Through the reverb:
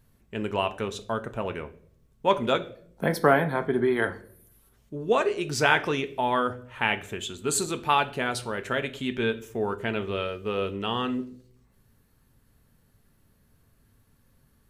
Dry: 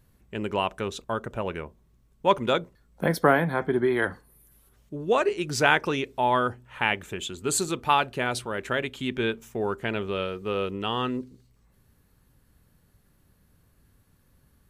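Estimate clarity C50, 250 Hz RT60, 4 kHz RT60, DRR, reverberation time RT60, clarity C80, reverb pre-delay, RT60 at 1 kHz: 16.0 dB, 0.80 s, 0.40 s, 8.0 dB, 0.55 s, 20.0 dB, 4 ms, 0.45 s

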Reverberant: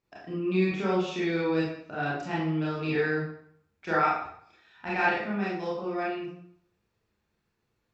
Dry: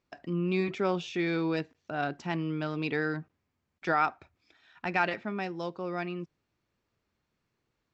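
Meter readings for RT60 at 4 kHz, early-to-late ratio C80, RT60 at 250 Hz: 0.50 s, 5.5 dB, 0.65 s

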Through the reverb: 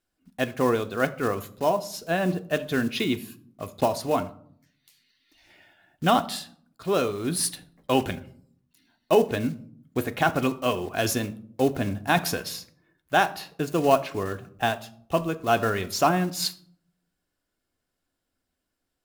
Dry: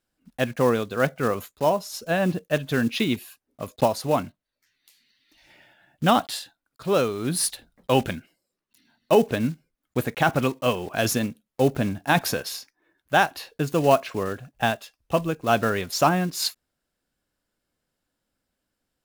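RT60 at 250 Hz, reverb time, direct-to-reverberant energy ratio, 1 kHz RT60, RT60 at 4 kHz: 0.90 s, 0.60 s, 9.0 dB, 0.55 s, 0.35 s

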